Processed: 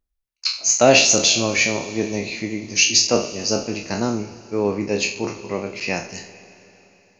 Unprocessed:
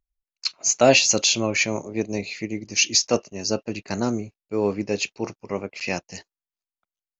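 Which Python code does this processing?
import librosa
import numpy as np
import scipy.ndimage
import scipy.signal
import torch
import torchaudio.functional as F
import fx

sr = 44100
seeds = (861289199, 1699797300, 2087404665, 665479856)

y = fx.spec_trails(x, sr, decay_s=0.41)
y = fx.notch(y, sr, hz=7300.0, q=18.0)
y = fx.rev_schroeder(y, sr, rt60_s=3.6, comb_ms=27, drr_db=14.0)
y = F.gain(torch.from_numpy(y), 1.5).numpy()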